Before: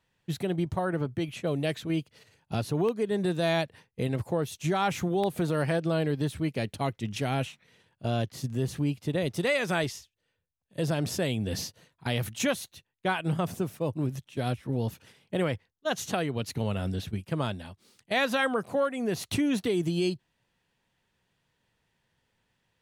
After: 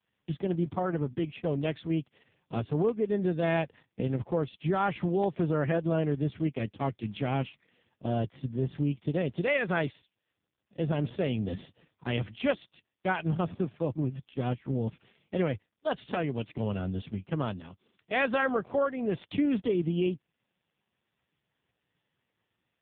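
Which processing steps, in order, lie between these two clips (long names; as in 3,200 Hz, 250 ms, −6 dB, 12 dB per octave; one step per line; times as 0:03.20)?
AMR narrowband 4.75 kbit/s 8,000 Hz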